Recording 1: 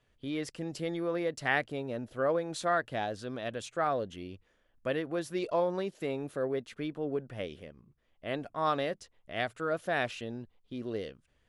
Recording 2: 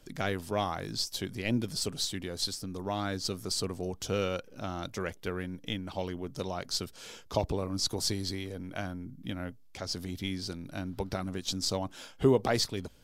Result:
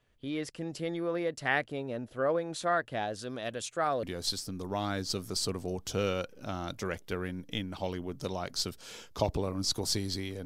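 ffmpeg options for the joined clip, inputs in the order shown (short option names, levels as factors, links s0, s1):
-filter_complex "[0:a]asettb=1/sr,asplit=3[s0][s1][s2];[s0]atrim=end=3.134[s3];[s1]atrim=start=3.13:end=4.03,asetpts=PTS-STARTPTS,afade=t=in:d=0.004:c=qsin,afade=t=out:st=0.896:d=0.004:c=qsin,bass=f=250:g=-1,treble=f=4000:g=8[s4];[s2]atrim=start=4.026[s5];[s3][s4]acrossfade=d=0.004:c1=hsin:c2=qsin[s6];[s6][s5]acrossfade=d=0.004:c1=qsin:c2=hsin,apad=whole_dur=10.45,atrim=end=10.45,atrim=end=4.032[s7];[1:a]atrim=start=2.178:end=8.6[s8];[s7][s8]acrossfade=d=0.004:c1=hsin:c2=hsin"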